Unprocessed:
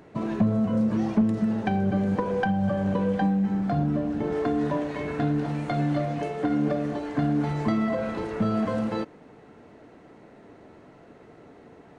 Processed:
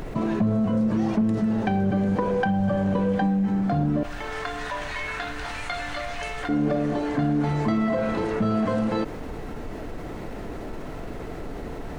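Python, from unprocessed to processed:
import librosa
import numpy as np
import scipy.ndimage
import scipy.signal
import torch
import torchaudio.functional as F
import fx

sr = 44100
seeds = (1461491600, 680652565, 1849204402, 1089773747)

y = fx.highpass(x, sr, hz=1400.0, slope=12, at=(4.03, 6.49))
y = fx.dmg_noise_colour(y, sr, seeds[0], colour='brown', level_db=-48.0)
y = fx.env_flatten(y, sr, amount_pct=50)
y = y * 10.0 ** (-2.0 / 20.0)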